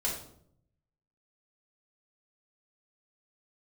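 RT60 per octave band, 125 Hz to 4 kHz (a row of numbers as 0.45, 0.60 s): 1.2, 0.90, 0.75, 0.60, 0.45, 0.45 s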